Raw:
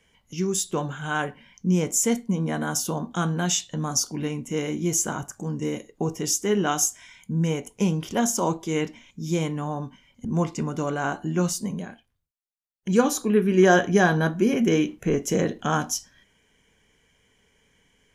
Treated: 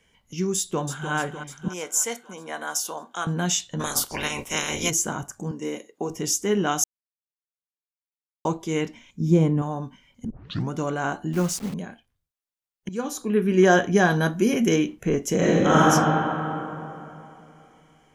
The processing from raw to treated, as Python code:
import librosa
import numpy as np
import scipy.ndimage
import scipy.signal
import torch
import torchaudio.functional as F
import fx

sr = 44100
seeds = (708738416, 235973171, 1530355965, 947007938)

y = fx.echo_throw(x, sr, start_s=0.57, length_s=0.56, ms=300, feedback_pct=65, wet_db=-9.0)
y = fx.highpass(y, sr, hz=620.0, slope=12, at=(1.68, 3.27))
y = fx.spec_clip(y, sr, under_db=29, at=(3.79, 4.89), fade=0.02)
y = fx.highpass(y, sr, hz=290.0, slope=12, at=(5.51, 6.1))
y = fx.tilt_shelf(y, sr, db=8.5, hz=970.0, at=(9.2, 9.62))
y = fx.delta_hold(y, sr, step_db=-35.0, at=(11.33, 11.74))
y = fx.high_shelf(y, sr, hz=4100.0, db=8.5, at=(14.1, 14.76))
y = fx.reverb_throw(y, sr, start_s=15.37, length_s=0.45, rt60_s=3.0, drr_db=-8.5)
y = fx.edit(y, sr, fx.silence(start_s=6.84, length_s=1.61),
    fx.tape_start(start_s=10.3, length_s=0.4),
    fx.fade_in_from(start_s=12.89, length_s=0.6, floor_db=-15.5), tone=tone)